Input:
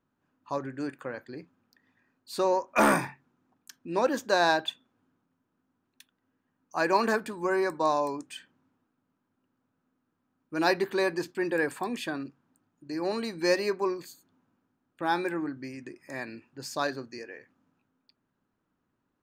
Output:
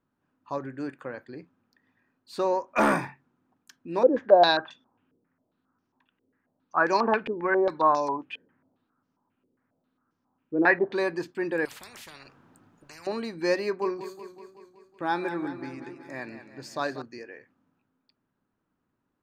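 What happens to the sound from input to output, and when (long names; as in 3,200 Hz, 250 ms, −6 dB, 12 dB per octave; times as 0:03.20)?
0:04.03–0:10.95: low-pass on a step sequencer 7.4 Hz 450–5,700 Hz
0:11.65–0:13.07: every bin compressed towards the loudest bin 10 to 1
0:13.63–0:17.02: feedback echo with a swinging delay time 187 ms, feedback 62%, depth 83 cents, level −11.5 dB
whole clip: high-shelf EQ 6,000 Hz −11.5 dB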